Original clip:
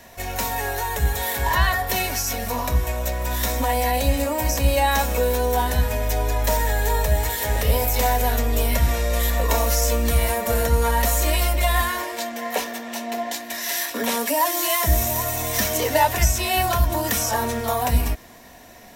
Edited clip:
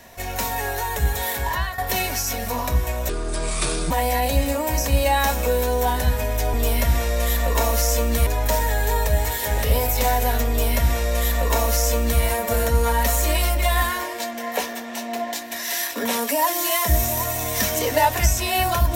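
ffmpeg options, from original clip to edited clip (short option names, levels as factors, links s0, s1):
-filter_complex "[0:a]asplit=6[s0][s1][s2][s3][s4][s5];[s0]atrim=end=1.78,asetpts=PTS-STARTPTS,afade=t=out:st=1.3:d=0.48:silence=0.237137[s6];[s1]atrim=start=1.78:end=3.094,asetpts=PTS-STARTPTS,afade=t=in:d=0.004:c=hsin:silence=0.237137[s7];[s2]atrim=start=3.09:end=3.62,asetpts=PTS-STARTPTS,asetrate=28665,aresample=44100,atrim=end_sample=35958,asetpts=PTS-STARTPTS[s8];[s3]atrim=start=3.616:end=6.252[s9];[s4]atrim=start=8.468:end=10.202[s10];[s5]atrim=start=6.248[s11];[s6][s7]concat=n=2:v=0:a=1[s12];[s12][s8]acrossfade=d=0.004:c1=hsin:c2=hsin[s13];[s13][s9]acrossfade=d=0.004:c1=hsin:c2=hsin[s14];[s14][s10]acrossfade=d=0.004:c1=hsin:c2=hsin[s15];[s15][s11]acrossfade=d=0.004:c1=hsin:c2=hsin"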